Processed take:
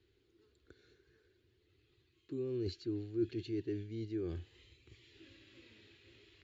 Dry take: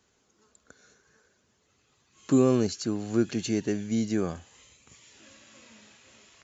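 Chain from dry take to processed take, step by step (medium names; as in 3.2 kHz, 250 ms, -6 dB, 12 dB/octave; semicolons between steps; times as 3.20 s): reverse; compression 10:1, threshold -33 dBFS, peak gain reduction 17 dB; reverse; FFT filter 110 Hz 0 dB, 210 Hz -19 dB, 350 Hz +3 dB, 600 Hz -20 dB, 1.1 kHz -21 dB, 1.9 kHz -10 dB, 4.2 kHz -8 dB, 6.2 kHz -27 dB; trim +3 dB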